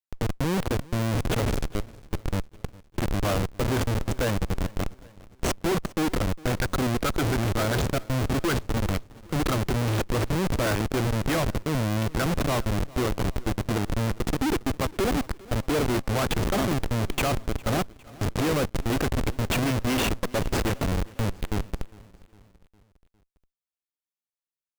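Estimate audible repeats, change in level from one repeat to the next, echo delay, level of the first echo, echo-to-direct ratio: 3, -5.5 dB, 0.406 s, -22.0 dB, -20.5 dB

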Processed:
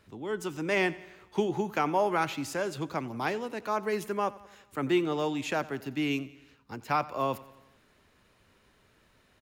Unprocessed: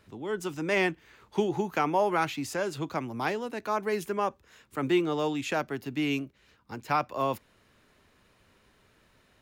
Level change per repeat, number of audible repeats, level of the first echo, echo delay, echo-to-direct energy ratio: -4.5 dB, 4, -19.5 dB, 89 ms, -17.5 dB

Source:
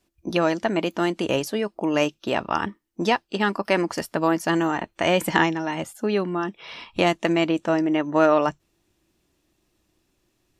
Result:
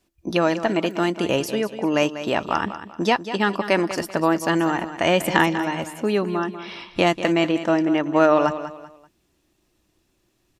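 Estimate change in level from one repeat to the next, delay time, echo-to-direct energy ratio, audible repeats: -10.0 dB, 0.193 s, -11.5 dB, 3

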